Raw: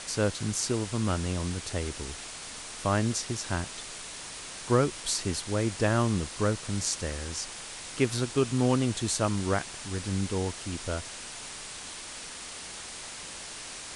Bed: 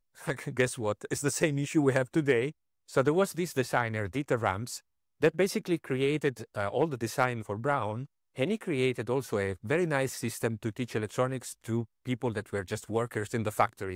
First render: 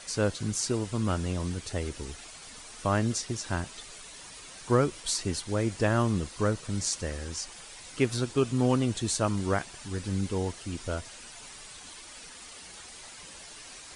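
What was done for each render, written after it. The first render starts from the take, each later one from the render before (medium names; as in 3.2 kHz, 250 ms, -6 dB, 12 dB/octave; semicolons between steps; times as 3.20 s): noise reduction 9 dB, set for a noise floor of -42 dBFS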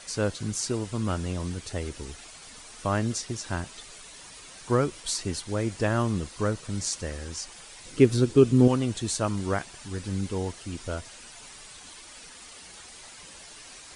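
7.85–8.68 s: resonant low shelf 540 Hz +7 dB, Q 1.5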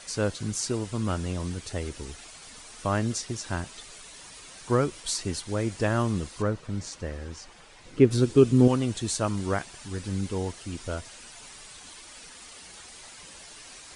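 6.42–8.11 s: low-pass 2 kHz 6 dB/octave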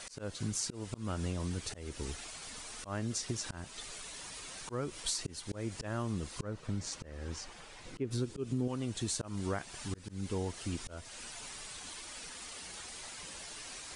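slow attack 331 ms; compression 5:1, threshold -32 dBFS, peak gain reduction 16 dB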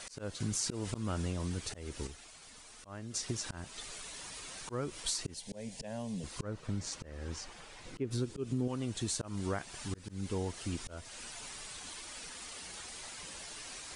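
0.40–1.22 s: level flattener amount 50%; 2.07–3.14 s: gain -8 dB; 5.34–6.24 s: static phaser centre 340 Hz, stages 6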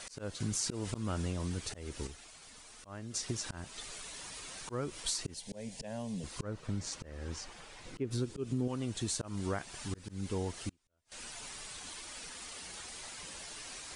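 10.69–11.12 s: inverted gate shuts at -38 dBFS, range -35 dB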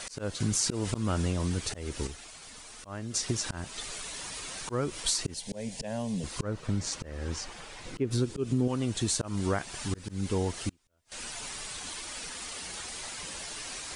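trim +6.5 dB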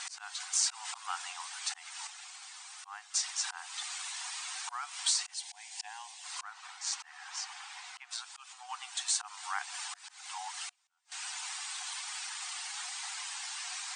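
FFT band-pass 720–9300 Hz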